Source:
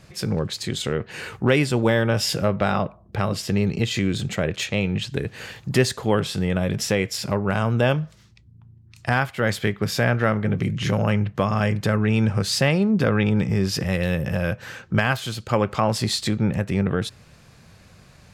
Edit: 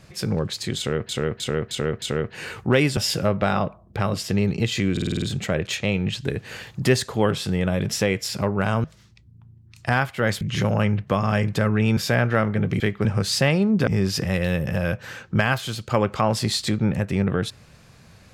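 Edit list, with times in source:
0.78–1.09 s: loop, 5 plays
1.73–2.16 s: delete
4.11 s: stutter 0.05 s, 7 plays
7.73–8.04 s: delete
9.61–9.86 s: swap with 10.69–12.25 s
13.07–13.46 s: delete

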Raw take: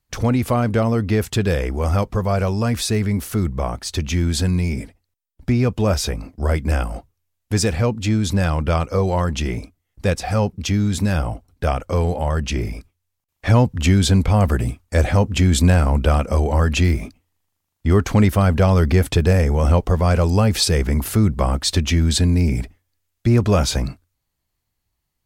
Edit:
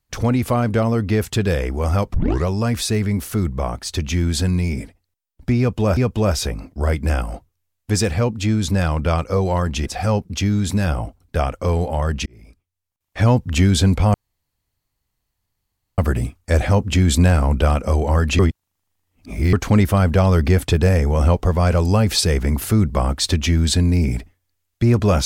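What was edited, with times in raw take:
2.14 s: tape start 0.33 s
5.59–5.97 s: loop, 2 plays
9.48–10.14 s: delete
12.54–13.66 s: fade in
14.42 s: insert room tone 1.84 s
16.83–17.97 s: reverse

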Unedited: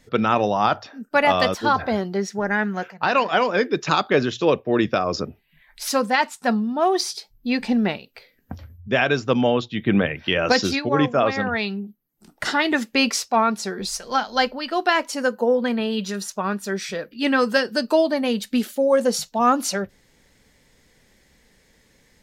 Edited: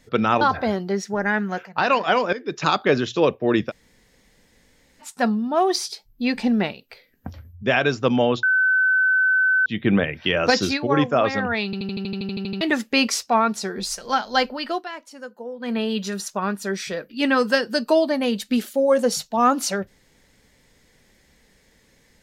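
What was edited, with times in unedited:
0.41–1.66 s: delete
3.58–3.95 s: fade in, from -16 dB
4.94–6.27 s: room tone, crossfade 0.06 s
9.68 s: add tone 1.52 kHz -15 dBFS 1.23 s
11.67 s: stutter in place 0.08 s, 12 plays
14.72–15.77 s: dip -15 dB, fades 0.15 s

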